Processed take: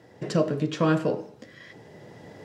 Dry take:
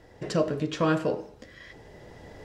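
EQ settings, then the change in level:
high-pass filter 120 Hz 24 dB per octave
low-shelf EQ 230 Hz +6.5 dB
0.0 dB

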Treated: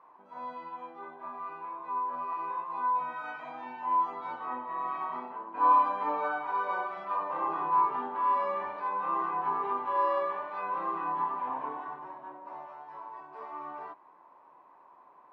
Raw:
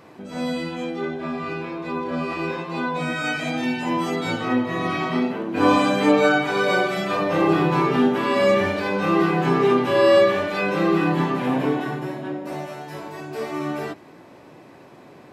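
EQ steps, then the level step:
resonant band-pass 1,000 Hz, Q 8
high-frequency loss of the air 70 metres
+2.5 dB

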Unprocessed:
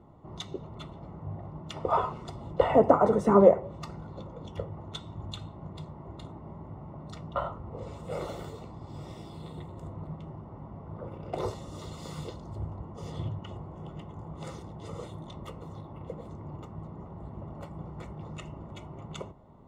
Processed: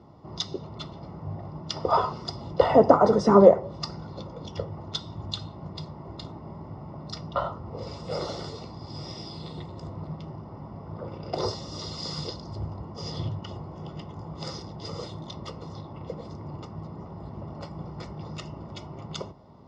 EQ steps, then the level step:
high-pass filter 66 Hz
dynamic equaliser 2,400 Hz, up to −7 dB, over −59 dBFS, Q 3.5
low-pass with resonance 5,100 Hz, resonance Q 10
+3.5 dB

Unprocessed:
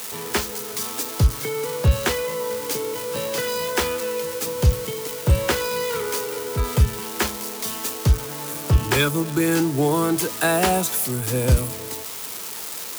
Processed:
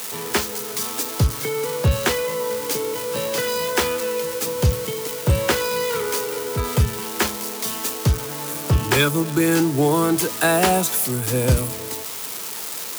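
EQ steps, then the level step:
high-pass filter 81 Hz
+2.0 dB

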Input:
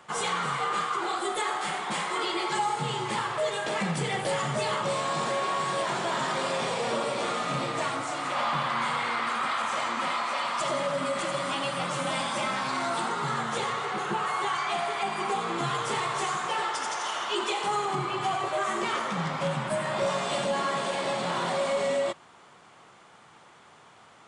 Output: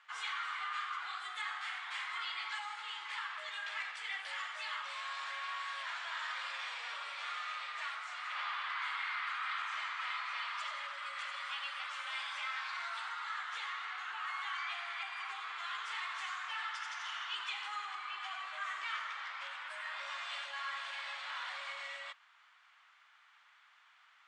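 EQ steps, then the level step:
four-pole ladder high-pass 1,200 Hz, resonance 25%
low-pass filter 4,000 Hz 12 dB per octave
−1.5 dB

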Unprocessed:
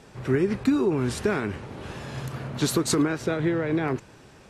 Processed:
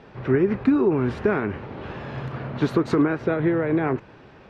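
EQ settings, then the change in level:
dynamic equaliser 4,200 Hz, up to −7 dB, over −47 dBFS, Q 1
high-frequency loss of the air 300 metres
low-shelf EQ 220 Hz −5 dB
+5.5 dB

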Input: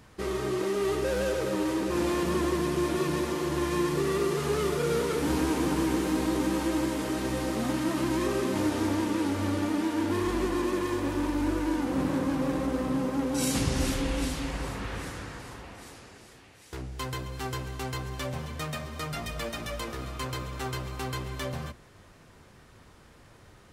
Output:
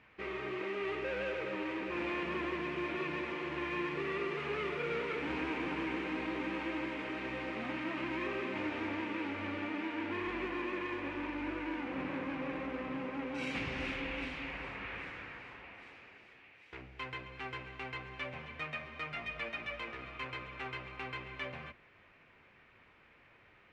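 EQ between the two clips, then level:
low-pass with resonance 2,400 Hz, resonance Q 3.9
low-shelf EQ 200 Hz −9.5 dB
−8.5 dB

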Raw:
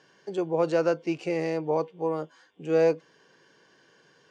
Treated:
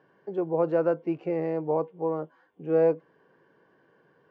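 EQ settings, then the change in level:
low-pass filter 1,300 Hz 12 dB per octave
0.0 dB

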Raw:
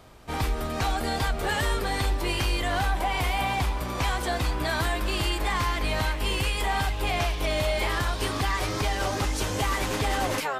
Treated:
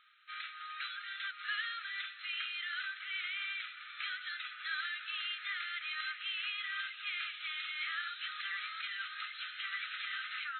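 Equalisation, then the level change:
linear-phase brick-wall band-pass 1,200–4,200 Hz
−6.5 dB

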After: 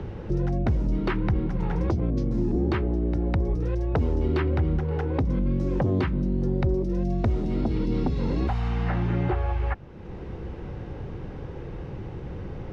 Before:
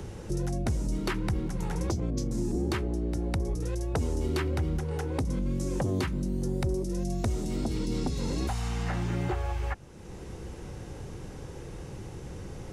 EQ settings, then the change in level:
high-frequency loss of the air 330 metres
+5.5 dB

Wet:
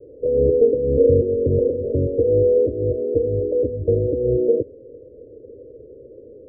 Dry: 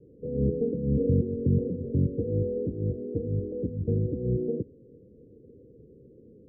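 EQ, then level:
low-pass with resonance 610 Hz, resonance Q 6.2
phaser with its sweep stopped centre 450 Hz, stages 4
+7.5 dB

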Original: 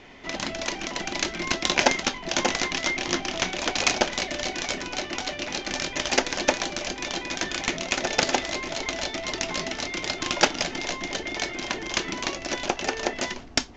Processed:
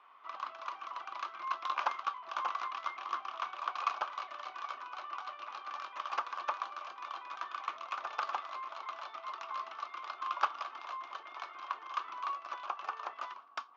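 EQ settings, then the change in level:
four-pole ladder band-pass 1,200 Hz, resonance 85%
high-frequency loss of the air 62 metres
parametric band 1,900 Hz −11 dB 0.54 octaves
+2.0 dB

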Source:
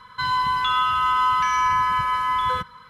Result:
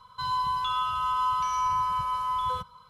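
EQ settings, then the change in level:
phaser with its sweep stopped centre 760 Hz, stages 4
−4.0 dB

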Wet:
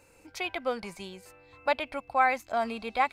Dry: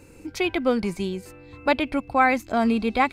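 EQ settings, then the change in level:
low shelf with overshoot 460 Hz −9 dB, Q 1.5
−6.0 dB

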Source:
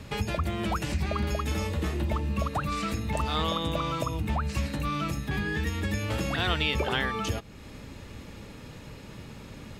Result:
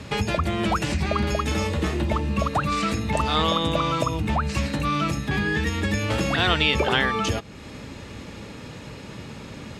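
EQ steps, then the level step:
high-pass filter 93 Hz 6 dB per octave
low-pass filter 9,300 Hz 12 dB per octave
+7.0 dB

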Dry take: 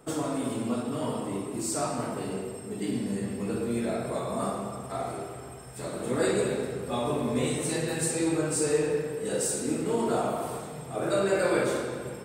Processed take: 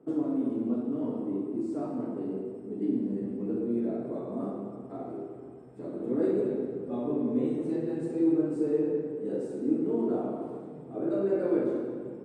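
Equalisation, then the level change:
resonant band-pass 300 Hz, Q 2.4
+4.5 dB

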